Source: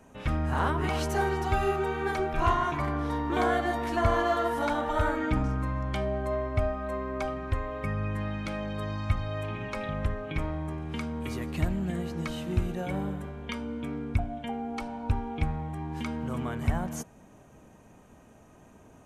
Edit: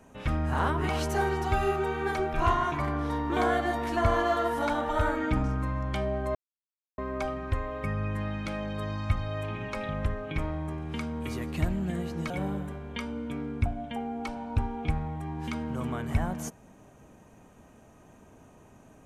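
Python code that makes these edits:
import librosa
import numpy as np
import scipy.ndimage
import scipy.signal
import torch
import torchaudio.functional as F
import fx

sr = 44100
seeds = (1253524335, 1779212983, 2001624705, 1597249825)

y = fx.edit(x, sr, fx.silence(start_s=6.35, length_s=0.63),
    fx.cut(start_s=12.3, length_s=0.53), tone=tone)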